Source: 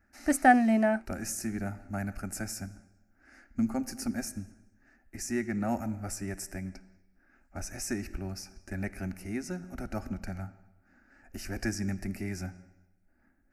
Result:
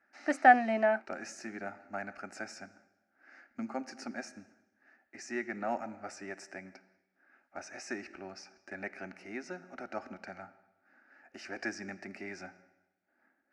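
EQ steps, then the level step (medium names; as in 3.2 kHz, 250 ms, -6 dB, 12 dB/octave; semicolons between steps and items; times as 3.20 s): band-pass 450–4700 Hz; distance through air 66 m; +1.5 dB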